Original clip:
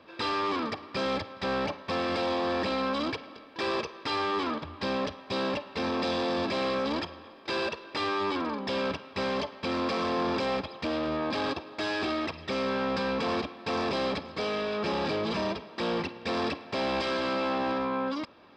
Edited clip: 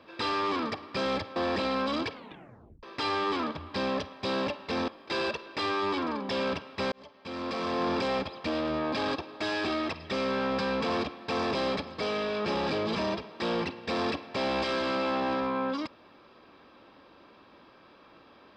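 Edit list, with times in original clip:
0:01.36–0:02.43: remove
0:03.20: tape stop 0.70 s
0:05.95–0:07.26: remove
0:09.30–0:10.25: fade in

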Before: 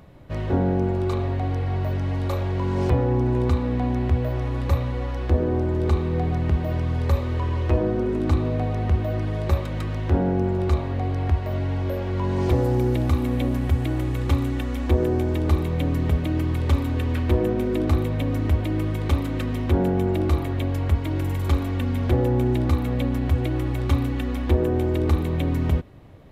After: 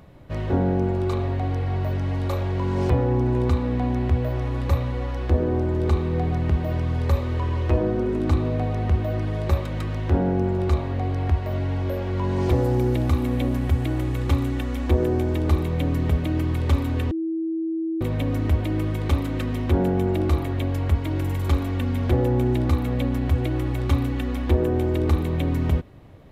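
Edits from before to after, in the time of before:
0:17.11–0:18.01: beep over 325 Hz −23 dBFS

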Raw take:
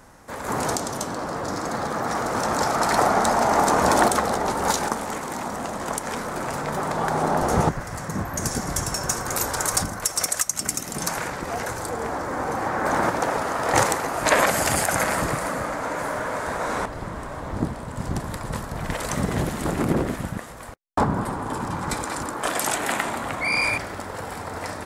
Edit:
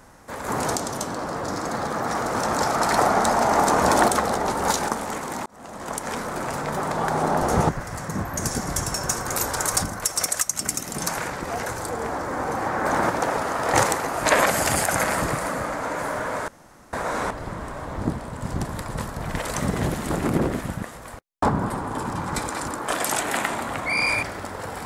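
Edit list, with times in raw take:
0:05.46–0:06.08: fade in
0:16.48: splice in room tone 0.45 s

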